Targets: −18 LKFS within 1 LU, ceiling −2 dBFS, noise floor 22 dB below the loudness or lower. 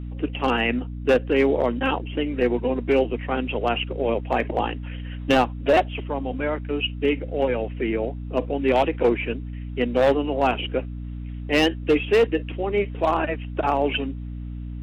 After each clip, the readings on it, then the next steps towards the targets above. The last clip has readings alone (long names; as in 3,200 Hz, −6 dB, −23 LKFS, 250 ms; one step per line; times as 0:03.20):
share of clipped samples 0.5%; peaks flattened at −11.5 dBFS; mains hum 60 Hz; hum harmonics up to 300 Hz; level of the hum −30 dBFS; integrated loudness −23.5 LKFS; sample peak −11.5 dBFS; target loudness −18.0 LKFS
→ clipped peaks rebuilt −11.5 dBFS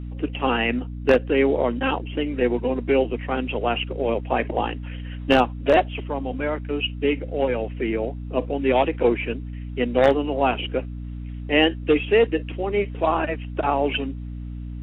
share of clipped samples 0.0%; mains hum 60 Hz; hum harmonics up to 300 Hz; level of the hum −30 dBFS
→ mains-hum notches 60/120/180/240/300 Hz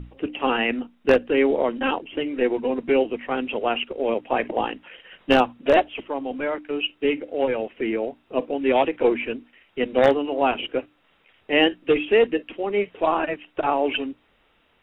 mains hum none found; integrated loudness −23.0 LKFS; sample peak −2.5 dBFS; target loudness −18.0 LKFS
→ level +5 dB
brickwall limiter −2 dBFS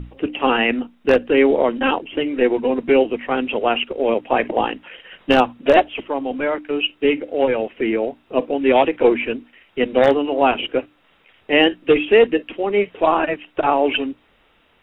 integrated loudness −18.5 LKFS; sample peak −2.0 dBFS; background noise floor −58 dBFS